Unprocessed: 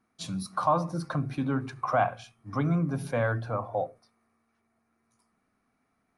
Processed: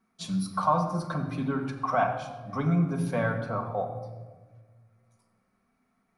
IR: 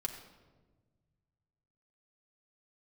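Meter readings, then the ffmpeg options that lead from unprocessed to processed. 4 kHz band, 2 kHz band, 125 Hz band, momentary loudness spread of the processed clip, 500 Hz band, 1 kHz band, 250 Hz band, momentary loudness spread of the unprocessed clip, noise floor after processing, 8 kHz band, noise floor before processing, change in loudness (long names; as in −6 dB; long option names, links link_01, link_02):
+0.5 dB, +0.5 dB, +1.0 dB, 10 LU, −0.5 dB, +1.0 dB, +2.0 dB, 9 LU, −74 dBFS, can't be measured, −75 dBFS, +0.5 dB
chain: -filter_complex "[1:a]atrim=start_sample=2205[link_01];[0:a][link_01]afir=irnorm=-1:irlink=0"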